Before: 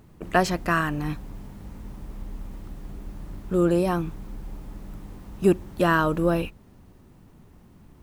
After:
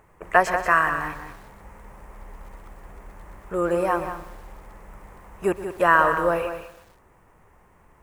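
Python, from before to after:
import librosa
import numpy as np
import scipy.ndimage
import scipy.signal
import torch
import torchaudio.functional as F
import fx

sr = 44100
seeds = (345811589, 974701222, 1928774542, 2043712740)

p1 = fx.graphic_eq(x, sr, hz=(125, 250, 500, 1000, 2000, 4000, 8000), db=(-4, -9, 7, 9, 11, -9, 5))
p2 = p1 + fx.echo_single(p1, sr, ms=185, db=-9.5, dry=0)
p3 = fx.echo_crushed(p2, sr, ms=123, feedback_pct=55, bits=6, wet_db=-14.5)
y = p3 * librosa.db_to_amplitude(-5.0)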